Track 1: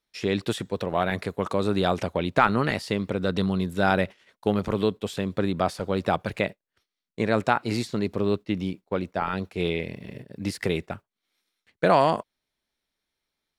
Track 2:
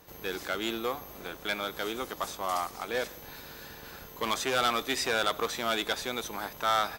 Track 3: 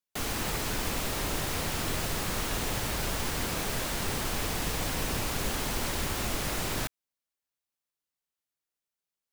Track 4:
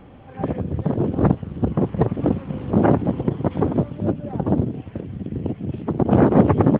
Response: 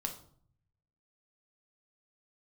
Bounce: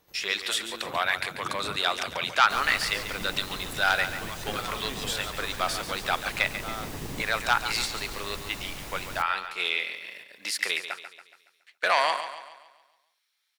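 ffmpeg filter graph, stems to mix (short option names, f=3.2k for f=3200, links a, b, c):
-filter_complex "[0:a]aeval=exprs='0.631*sin(PI/2*1.58*val(0)/0.631)':c=same,highpass=1.5k,volume=0dB,asplit=3[a][b][c];[b]volume=-10.5dB[d];[1:a]volume=-11dB[e];[2:a]adelay=2350,volume=-10.5dB,asplit=2[f][g];[g]volume=-9.5dB[h];[3:a]alimiter=limit=-11dB:level=0:latency=1,adelay=450,volume=-18dB[i];[c]apad=whole_len=319351[j];[i][j]sidechaincompress=threshold=-27dB:ratio=8:attack=16:release=978[k];[4:a]atrim=start_sample=2205[l];[h][l]afir=irnorm=-1:irlink=0[m];[d]aecho=0:1:140|280|420|560|700|840|980:1|0.47|0.221|0.104|0.0488|0.0229|0.0108[n];[a][e][f][k][m][n]amix=inputs=6:normalize=0"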